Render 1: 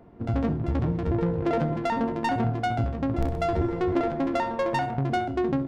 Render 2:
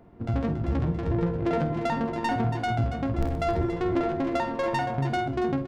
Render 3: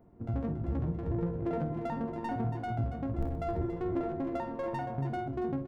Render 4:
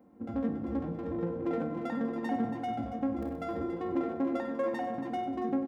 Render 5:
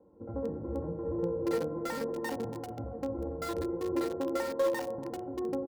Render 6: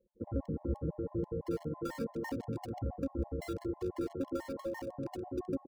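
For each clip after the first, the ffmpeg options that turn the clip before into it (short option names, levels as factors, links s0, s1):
-filter_complex "[0:a]equalizer=f=500:t=o:w=2.9:g=-2.5,asplit=2[s0][s1];[s1]aecho=0:1:49.56|279.9:0.251|0.316[s2];[s0][s2]amix=inputs=2:normalize=0"
-af "equalizer=f=4700:w=0.34:g=-12.5,volume=0.501"
-filter_complex "[0:a]highpass=150,aecho=1:1:3.8:0.9,asplit=2[s0][s1];[s1]aecho=0:1:96|192|288|384|480|576:0.237|0.133|0.0744|0.0416|0.0233|0.0131[s2];[s0][s2]amix=inputs=2:normalize=0"
-filter_complex "[0:a]aecho=1:1:2.1:0.72,acrossover=split=510|1100[s0][s1][s2];[s2]acrusher=bits=6:mix=0:aa=0.000001[s3];[s0][s1][s3]amix=inputs=3:normalize=0"
-filter_complex "[0:a]anlmdn=0.0251,acrossover=split=250[s0][s1];[s1]acompressor=threshold=0.00631:ratio=8[s2];[s0][s2]amix=inputs=2:normalize=0,afftfilt=real='re*gt(sin(2*PI*6*pts/sr)*(1-2*mod(floor(b*sr/1024/560),2)),0)':imag='im*gt(sin(2*PI*6*pts/sr)*(1-2*mod(floor(b*sr/1024/560),2)),0)':win_size=1024:overlap=0.75,volume=2.11"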